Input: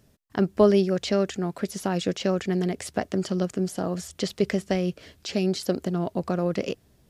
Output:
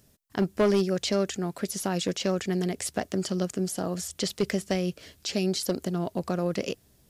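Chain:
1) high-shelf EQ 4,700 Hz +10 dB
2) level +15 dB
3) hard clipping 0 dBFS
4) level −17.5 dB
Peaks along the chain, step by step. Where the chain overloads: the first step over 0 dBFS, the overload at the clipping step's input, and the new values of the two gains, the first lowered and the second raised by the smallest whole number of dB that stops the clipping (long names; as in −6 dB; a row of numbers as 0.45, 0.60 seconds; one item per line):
−7.5, +7.5, 0.0, −17.5 dBFS
step 2, 7.5 dB
step 2 +7 dB, step 4 −9.5 dB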